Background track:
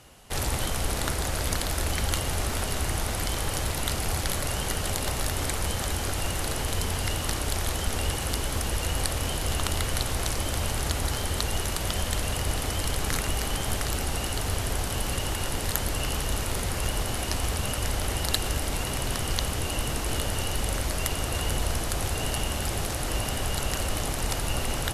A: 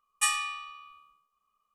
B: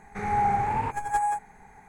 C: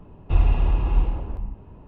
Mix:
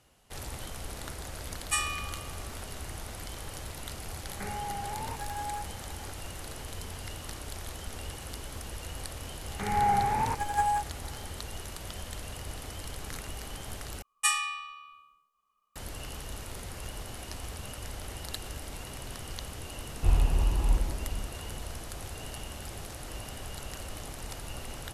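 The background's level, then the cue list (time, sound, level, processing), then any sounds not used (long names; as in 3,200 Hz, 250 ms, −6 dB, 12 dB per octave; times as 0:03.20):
background track −12 dB
0:01.50: mix in A −3 dB
0:04.25: mix in B + downward compressor, threshold −35 dBFS
0:09.44: mix in B −1.5 dB
0:14.02: overwrite with A
0:19.73: mix in C −5.5 dB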